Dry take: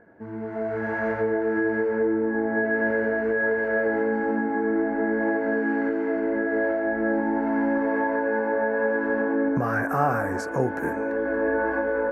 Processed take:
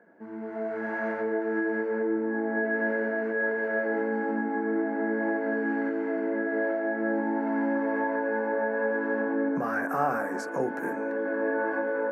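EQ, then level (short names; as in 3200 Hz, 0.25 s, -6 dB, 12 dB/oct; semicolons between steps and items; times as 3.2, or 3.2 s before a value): steep high-pass 160 Hz; notches 50/100/150/200/250/300/350/400/450 Hz; -3.5 dB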